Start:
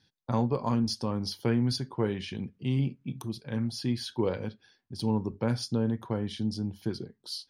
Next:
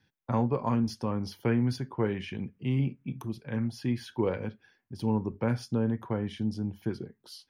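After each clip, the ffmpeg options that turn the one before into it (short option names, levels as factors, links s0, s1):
-filter_complex "[0:a]highshelf=f=3300:t=q:w=1.5:g=-10.5,acrossover=split=490|870[s0][s1][s2];[s2]aexciter=amount=1:drive=9.2:freq=5300[s3];[s0][s1][s3]amix=inputs=3:normalize=0"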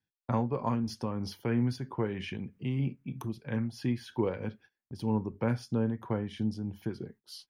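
-filter_complex "[0:a]agate=range=0.1:threshold=0.00224:ratio=16:detection=peak,asplit=2[s0][s1];[s1]acompressor=threshold=0.0178:ratio=6,volume=0.708[s2];[s0][s2]amix=inputs=2:normalize=0,tremolo=f=3.1:d=0.37,volume=0.75"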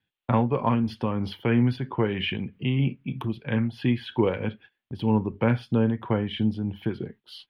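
-af "highshelf=f=4400:t=q:w=3:g=-12,volume=2.24"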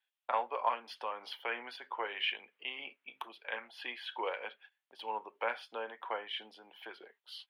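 -af "highpass=f=620:w=0.5412,highpass=f=620:w=1.3066,volume=0.631"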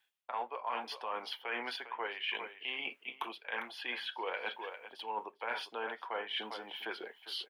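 -af "bandreject=f=560:w=17,aecho=1:1:403:0.15,areverse,acompressor=threshold=0.00562:ratio=6,areverse,volume=2.99"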